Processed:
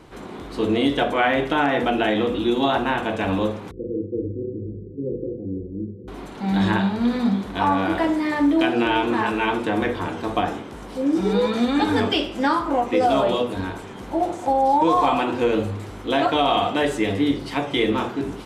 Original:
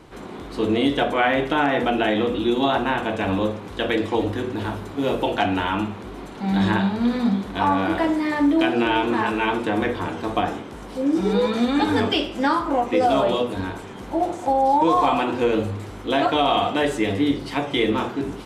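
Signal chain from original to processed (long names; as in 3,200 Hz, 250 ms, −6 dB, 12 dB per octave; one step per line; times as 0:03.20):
0:03.71–0:06.08: Chebyshev low-pass with heavy ripple 520 Hz, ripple 6 dB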